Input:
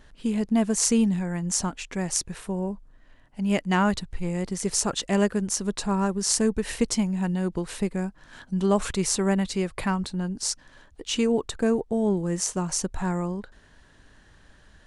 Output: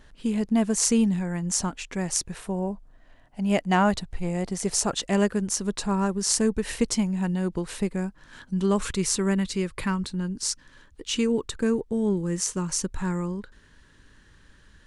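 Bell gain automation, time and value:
bell 700 Hz 0.44 oct
2.16 s -1 dB
2.7 s +7 dB
4.59 s +7 dB
5.26 s -2 dB
7.92 s -2 dB
9.01 s -13.5 dB

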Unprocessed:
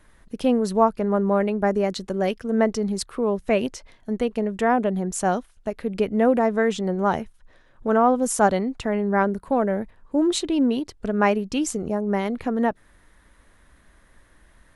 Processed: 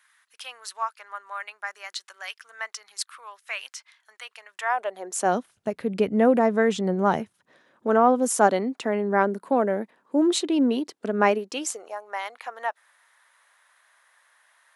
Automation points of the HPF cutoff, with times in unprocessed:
HPF 24 dB/oct
4.5 s 1200 Hz
5.1 s 410 Hz
5.53 s 100 Hz
7.05 s 100 Hz
7.91 s 220 Hz
11.27 s 220 Hz
11.96 s 770 Hz

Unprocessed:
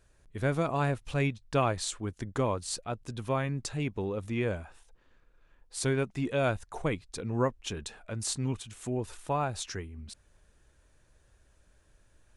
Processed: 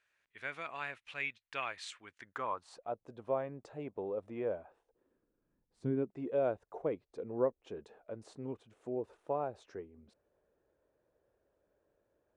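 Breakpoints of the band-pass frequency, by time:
band-pass, Q 1.9
2.12 s 2200 Hz
2.95 s 580 Hz
4.62 s 580 Hz
5.78 s 170 Hz
6.18 s 490 Hz

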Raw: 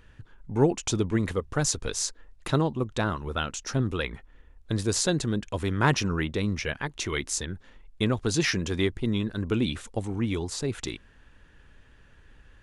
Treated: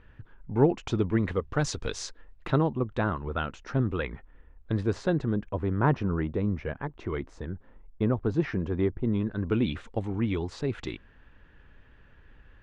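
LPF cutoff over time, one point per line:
1.22 s 2400 Hz
1.84 s 4700 Hz
2.73 s 2000 Hz
4.76 s 2000 Hz
5.67 s 1100 Hz
8.99 s 1100 Hz
9.72 s 2800 Hz

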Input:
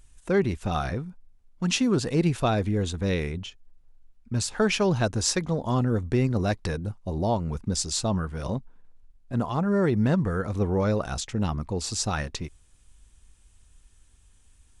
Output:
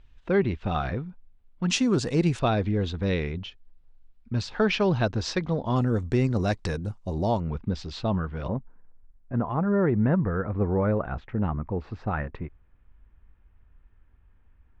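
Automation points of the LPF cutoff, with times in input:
LPF 24 dB/oct
3800 Hz
from 1.7 s 8100 Hz
from 2.39 s 4500 Hz
from 5.76 s 8600 Hz
from 7.4 s 3500 Hz
from 8.48 s 2000 Hz

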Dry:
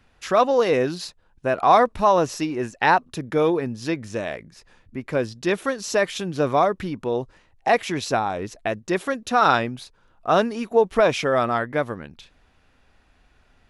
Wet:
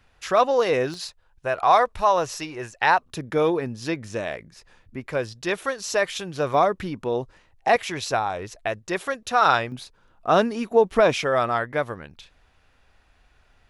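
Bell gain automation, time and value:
bell 240 Hz 1.3 oct
-6 dB
from 0.94 s -14.5 dB
from 3.1 s -3.5 dB
from 5.07 s -9.5 dB
from 6.54 s -2.5 dB
from 7.76 s -9.5 dB
from 9.72 s +0.5 dB
from 11.17 s -6.5 dB

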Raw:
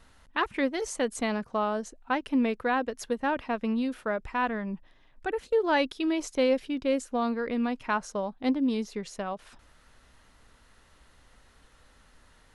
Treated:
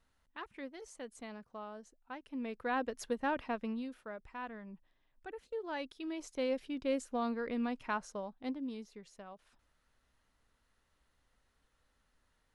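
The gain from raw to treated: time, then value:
2.27 s -18 dB
2.8 s -6 dB
3.47 s -6 dB
4.03 s -15.5 dB
5.76 s -15.5 dB
6.91 s -7 dB
7.82 s -7 dB
9.01 s -17 dB

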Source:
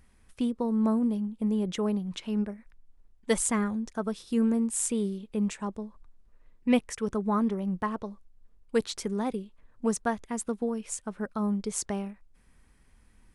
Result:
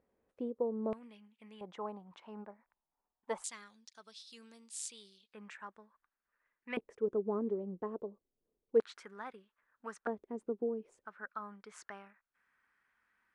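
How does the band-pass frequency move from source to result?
band-pass, Q 2.7
500 Hz
from 0.93 s 2300 Hz
from 1.61 s 900 Hz
from 3.44 s 4300 Hz
from 5.33 s 1600 Hz
from 6.77 s 420 Hz
from 8.8 s 1500 Hz
from 10.07 s 390 Hz
from 11.05 s 1500 Hz

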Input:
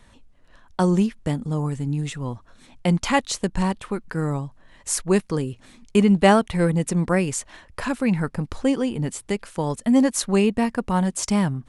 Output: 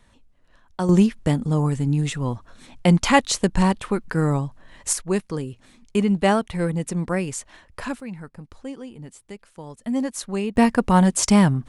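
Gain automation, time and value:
-4.5 dB
from 0.89 s +4 dB
from 4.93 s -3.5 dB
from 8 s -13.5 dB
from 9.8 s -7 dB
from 10.56 s +5.5 dB

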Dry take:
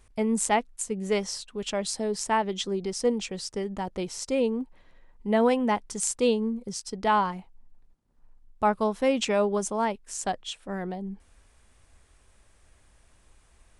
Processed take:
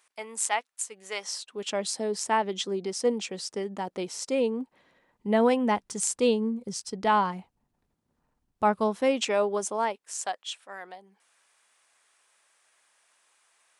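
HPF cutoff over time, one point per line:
1.17 s 920 Hz
1.7 s 220 Hz
4.59 s 220 Hz
5.49 s 88 Hz
8.81 s 88 Hz
9.21 s 320 Hz
9.73 s 320 Hz
10.47 s 880 Hz

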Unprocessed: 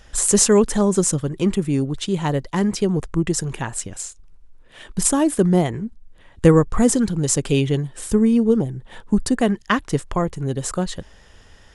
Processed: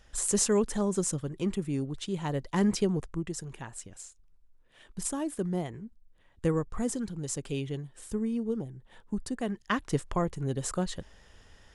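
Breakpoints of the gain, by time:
2.28 s -11 dB
2.7 s -4.5 dB
3.29 s -15 dB
9.4 s -15 dB
9.89 s -7.5 dB

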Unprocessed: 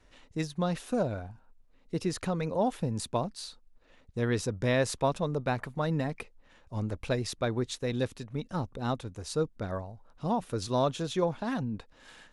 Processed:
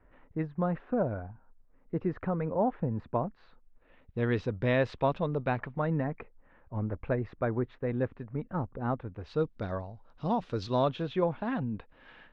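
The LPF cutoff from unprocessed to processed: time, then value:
LPF 24 dB/oct
3.3 s 1800 Hz
4.23 s 3300 Hz
5.45 s 3300 Hz
6.1 s 1900 Hz
9.01 s 1900 Hz
9.56 s 4700 Hz
10.56 s 4700 Hz
11.15 s 2900 Hz

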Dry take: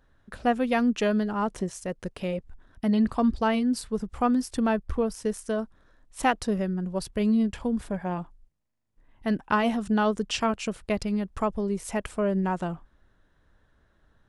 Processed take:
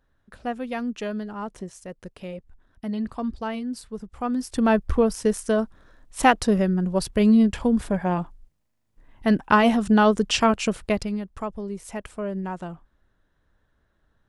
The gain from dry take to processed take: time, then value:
4.17 s -5.5 dB
4.75 s +6.5 dB
10.8 s +6.5 dB
11.29 s -4 dB

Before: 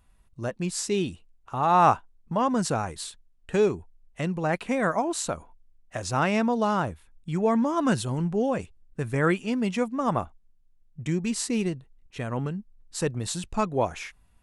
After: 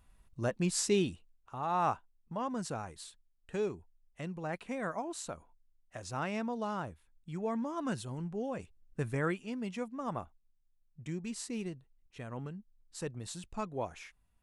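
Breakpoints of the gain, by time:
0.92 s -2 dB
1.59 s -12 dB
8.5 s -12 dB
9.01 s -4.5 dB
9.37 s -12 dB

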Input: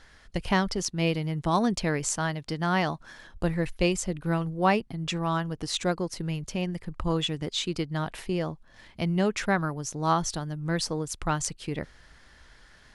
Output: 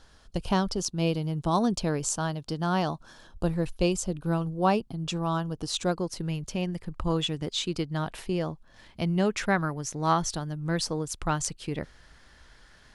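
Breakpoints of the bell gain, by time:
bell 2000 Hz 0.54 oct
5.51 s -13.5 dB
6.24 s -4 dB
9.14 s -4 dB
9.98 s +6.5 dB
10.34 s -2.5 dB

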